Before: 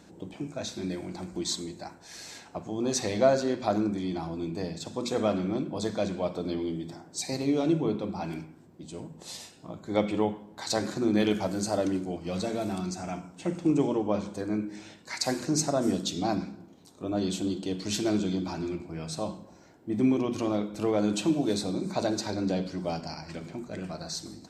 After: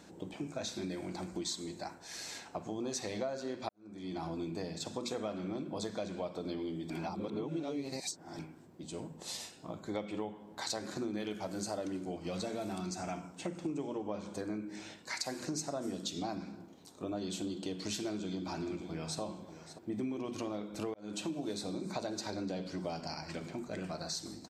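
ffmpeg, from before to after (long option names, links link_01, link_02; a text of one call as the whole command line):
ffmpeg -i in.wav -filter_complex "[0:a]asplit=2[link_01][link_02];[link_02]afade=type=in:start_time=18.08:duration=0.01,afade=type=out:start_time=19.2:duration=0.01,aecho=0:1:580|1160|1740:0.16788|0.0503641|0.0151092[link_03];[link_01][link_03]amix=inputs=2:normalize=0,asplit=5[link_04][link_05][link_06][link_07][link_08];[link_04]atrim=end=3.69,asetpts=PTS-STARTPTS,afade=type=out:start_time=3.686:duration=0.004:curve=hsin[link_09];[link_05]atrim=start=3.69:end=6.902,asetpts=PTS-STARTPTS,afade=type=in:duration=0.58:curve=qua[link_10];[link_06]atrim=start=6.898:end=8.392,asetpts=PTS-STARTPTS,areverse[link_11];[link_07]atrim=start=8.388:end=20.94,asetpts=PTS-STARTPTS,afade=type=out:start_time=12.548:duration=0.004:curve=hsin[link_12];[link_08]atrim=start=20.94,asetpts=PTS-STARTPTS,afade=type=in:duration=0.52[link_13];[link_09][link_10]concat=n=2:v=0:a=1[link_14];[link_14][link_11]acrossfade=duration=0.004:curve1=hsin:curve2=hsin[link_15];[link_12][link_13]concat=n=2:v=0:a=1[link_16];[link_15][link_16]acrossfade=duration=0.004:curve1=hsin:curve2=hsin,lowshelf=frequency=250:gain=-5,acompressor=threshold=-35dB:ratio=6" out.wav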